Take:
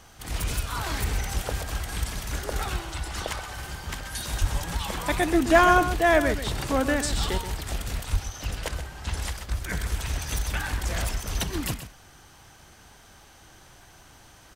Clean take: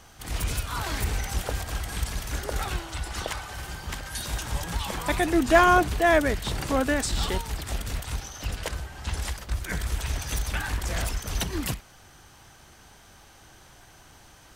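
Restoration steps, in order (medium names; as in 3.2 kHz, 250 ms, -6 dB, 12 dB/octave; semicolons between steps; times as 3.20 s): 4.40–4.52 s: high-pass 140 Hz 24 dB/octave; 8.12–8.24 s: high-pass 140 Hz 24 dB/octave; inverse comb 129 ms -11 dB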